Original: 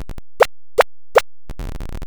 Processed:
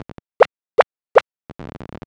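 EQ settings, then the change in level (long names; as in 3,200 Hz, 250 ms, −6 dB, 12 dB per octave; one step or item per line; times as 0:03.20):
band-pass filter 140–4,600 Hz
high-shelf EQ 2,500 Hz −9 dB
+1.5 dB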